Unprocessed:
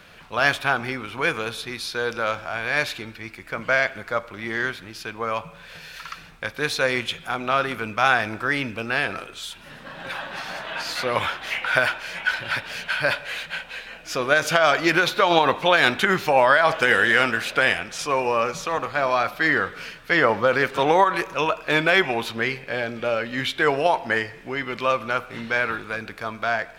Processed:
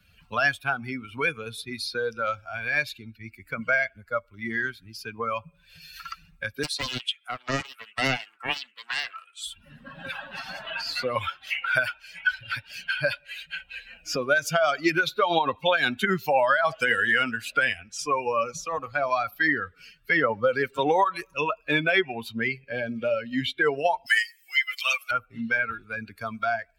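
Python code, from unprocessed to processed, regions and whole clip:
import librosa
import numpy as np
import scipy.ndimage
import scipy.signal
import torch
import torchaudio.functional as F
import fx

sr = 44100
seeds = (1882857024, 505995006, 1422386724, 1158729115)

y = fx.chain(x, sr, fx.highpass(hz=860.0, slope=12),
    fx.peak_eq(hz=8900.0, db=4.0, octaves=0.42),
    fx.doppler_dist(depth_ms=0.67), at=(6.63, 9.47))
y = fx.chain(y, sr, fx.highpass(hz=1200.0, slope=6),
    fx.tilt_eq(slope=4.5),
    fx.comb(ms=6.3, depth=0.93), at=(24.06, 25.11))
y = fx.bin_expand(y, sr, power=2.0)
y = fx.band_squash(y, sr, depth_pct=70)
y = F.gain(torch.from_numpy(y), 2.5).numpy()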